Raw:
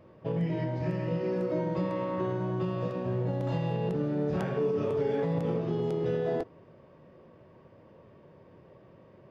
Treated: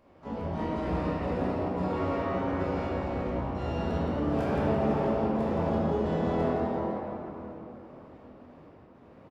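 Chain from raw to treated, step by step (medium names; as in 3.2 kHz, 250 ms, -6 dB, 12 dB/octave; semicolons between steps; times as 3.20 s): bass shelf 280 Hz -9 dB; trance gate "xxx.xxxx.xx.." 109 bpm -24 dB; harmony voices -12 st -1 dB, +7 st -8 dB, +12 st -11 dB; on a send: frequency-shifting echo 169 ms, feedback 52%, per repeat +120 Hz, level -5.5 dB; on the sum: simulated room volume 170 m³, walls hard, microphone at 1.2 m; trim -8 dB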